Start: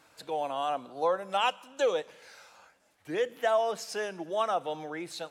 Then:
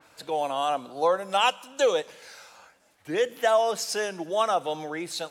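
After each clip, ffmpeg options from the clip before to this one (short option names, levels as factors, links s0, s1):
-af "adynamicequalizer=threshold=0.00447:dfrequency=3600:dqfactor=0.7:tfrequency=3600:tqfactor=0.7:attack=5:release=100:ratio=0.375:range=3:mode=boostabove:tftype=highshelf,volume=1.68"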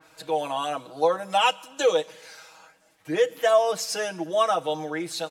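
-af "aecho=1:1:6.3:0.9,volume=0.841"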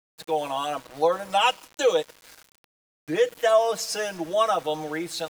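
-af "aeval=exprs='val(0)*gte(abs(val(0)),0.00944)':c=same"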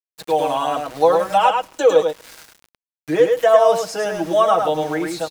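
-filter_complex "[0:a]acrossover=split=1500[s0][s1];[s1]acompressor=threshold=0.00891:ratio=4[s2];[s0][s2]amix=inputs=2:normalize=0,aecho=1:1:105:0.596,volume=2.24"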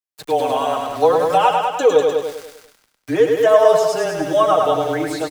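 -af "aecho=1:1:197|394|591:0.501|0.115|0.0265,afreqshift=-21"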